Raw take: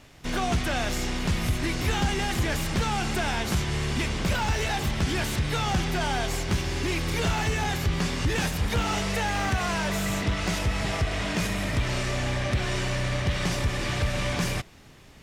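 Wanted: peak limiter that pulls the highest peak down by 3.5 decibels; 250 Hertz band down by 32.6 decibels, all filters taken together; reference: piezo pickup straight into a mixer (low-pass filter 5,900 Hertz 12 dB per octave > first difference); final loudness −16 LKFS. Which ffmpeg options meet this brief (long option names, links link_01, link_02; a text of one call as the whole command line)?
ffmpeg -i in.wav -af "equalizer=frequency=250:width_type=o:gain=-4.5,alimiter=limit=-20dB:level=0:latency=1,lowpass=5900,aderivative,volume=24.5dB" out.wav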